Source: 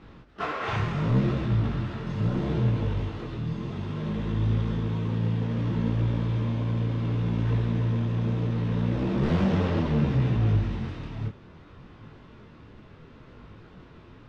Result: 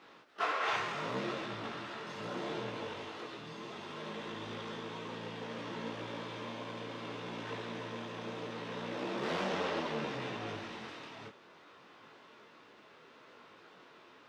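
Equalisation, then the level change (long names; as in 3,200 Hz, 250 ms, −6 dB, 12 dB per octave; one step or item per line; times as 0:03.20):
high-pass filter 490 Hz 12 dB per octave
high-shelf EQ 4,500 Hz +6.5 dB
−2.0 dB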